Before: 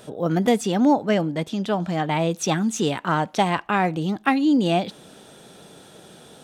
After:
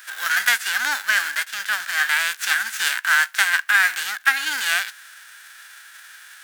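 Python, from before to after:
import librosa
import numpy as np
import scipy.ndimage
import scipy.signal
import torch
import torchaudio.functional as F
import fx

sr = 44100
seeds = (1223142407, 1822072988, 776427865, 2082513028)

y = fx.envelope_flatten(x, sr, power=0.3)
y = fx.highpass_res(y, sr, hz=1600.0, q=7.4)
y = y * 10.0 ** (-1.0 / 20.0)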